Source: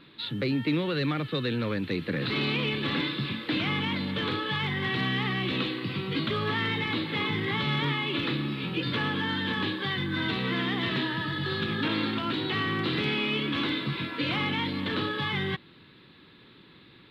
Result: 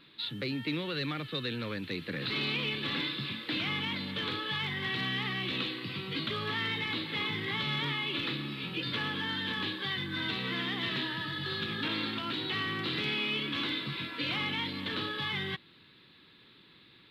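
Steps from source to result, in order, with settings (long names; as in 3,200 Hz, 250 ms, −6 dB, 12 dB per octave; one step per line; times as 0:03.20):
high-shelf EQ 2,000 Hz +9 dB
level −8 dB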